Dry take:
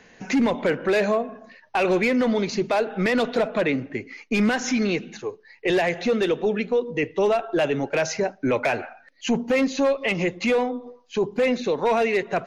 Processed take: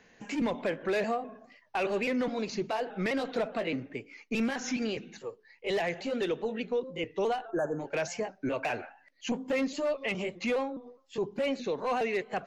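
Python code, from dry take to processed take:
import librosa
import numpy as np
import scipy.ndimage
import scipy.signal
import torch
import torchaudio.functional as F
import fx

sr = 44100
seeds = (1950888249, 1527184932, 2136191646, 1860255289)

y = fx.pitch_trill(x, sr, semitones=1.5, every_ms=207)
y = fx.spec_erase(y, sr, start_s=7.51, length_s=0.29, low_hz=1800.0, high_hz=6000.0)
y = y * librosa.db_to_amplitude(-8.5)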